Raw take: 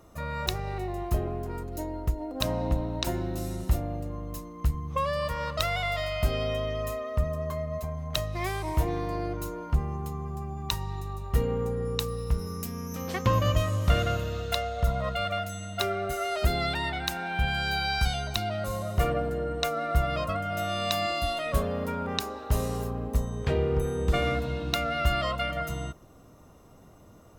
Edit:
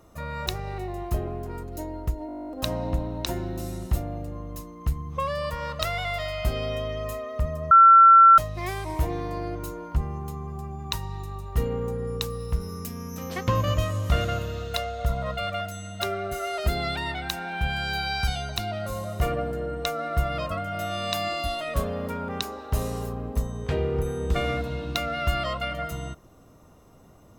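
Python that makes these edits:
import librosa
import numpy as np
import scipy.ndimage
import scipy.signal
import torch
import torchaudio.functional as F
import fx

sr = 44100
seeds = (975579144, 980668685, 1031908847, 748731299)

y = fx.edit(x, sr, fx.stutter(start_s=2.27, slice_s=0.02, count=12),
    fx.bleep(start_s=7.49, length_s=0.67, hz=1350.0, db=-9.0), tone=tone)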